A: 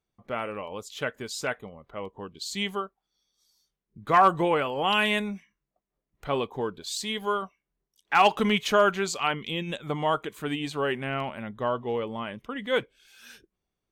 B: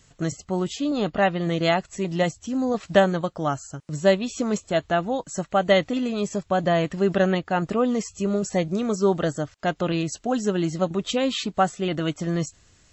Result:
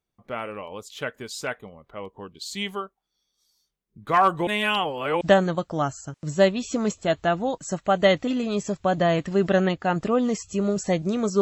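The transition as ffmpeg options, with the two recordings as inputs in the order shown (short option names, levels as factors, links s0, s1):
-filter_complex "[0:a]apad=whole_dur=11.41,atrim=end=11.41,asplit=2[s0][s1];[s0]atrim=end=4.472[s2];[s1]atrim=start=4.468:end=5.212,asetpts=PTS-STARTPTS,areverse[s3];[1:a]atrim=start=2.868:end=9.07[s4];[s2][s3]acrossfade=d=0.004:c1=hsin:c2=hsin[s5];[s5][s4]acrossfade=d=0.004:c1=hsin:c2=hsin"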